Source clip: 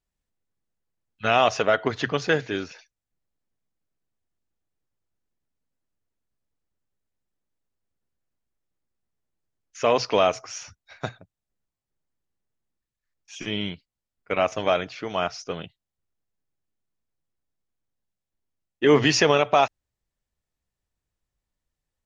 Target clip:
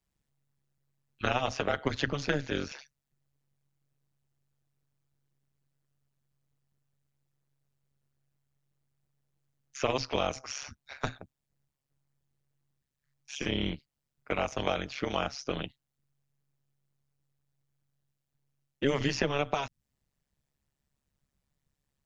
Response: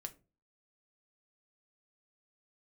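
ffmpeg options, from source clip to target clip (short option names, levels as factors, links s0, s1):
-filter_complex "[0:a]acrossover=split=170|1700|5200[s0][s1][s2][s3];[s0]acompressor=threshold=0.0158:ratio=4[s4];[s1]acompressor=threshold=0.0224:ratio=4[s5];[s2]acompressor=threshold=0.01:ratio=4[s6];[s3]acompressor=threshold=0.00282:ratio=4[s7];[s4][s5][s6][s7]amix=inputs=4:normalize=0,tremolo=f=140:d=0.974,volume=2"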